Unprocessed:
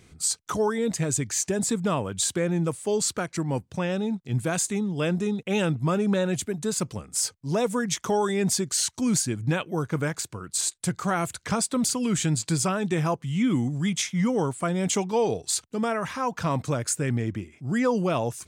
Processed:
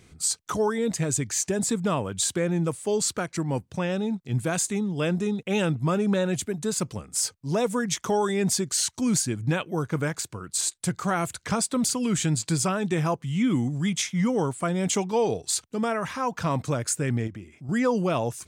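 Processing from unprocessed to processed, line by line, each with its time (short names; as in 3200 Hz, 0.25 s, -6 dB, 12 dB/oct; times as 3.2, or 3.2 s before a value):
17.27–17.69 compressor 2:1, threshold -39 dBFS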